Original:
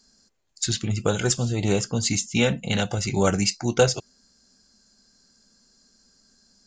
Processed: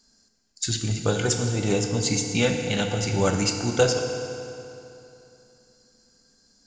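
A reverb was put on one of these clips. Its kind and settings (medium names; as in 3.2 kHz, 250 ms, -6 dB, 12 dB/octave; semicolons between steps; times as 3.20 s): FDN reverb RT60 2.9 s, high-frequency decay 0.8×, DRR 3.5 dB; trim -2 dB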